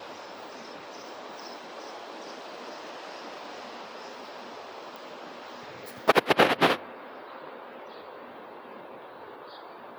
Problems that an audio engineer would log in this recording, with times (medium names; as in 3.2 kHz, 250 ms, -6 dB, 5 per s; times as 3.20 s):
4.96 s: pop